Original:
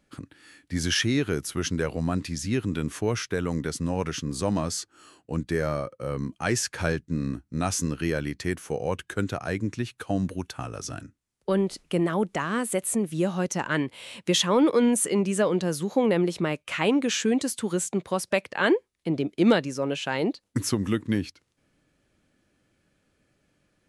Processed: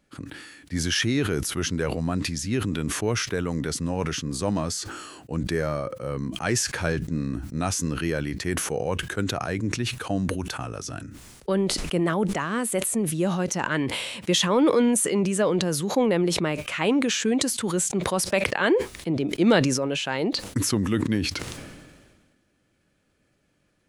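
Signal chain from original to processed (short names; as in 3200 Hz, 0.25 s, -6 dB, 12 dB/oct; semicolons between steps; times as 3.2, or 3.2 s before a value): sustainer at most 36 dB/s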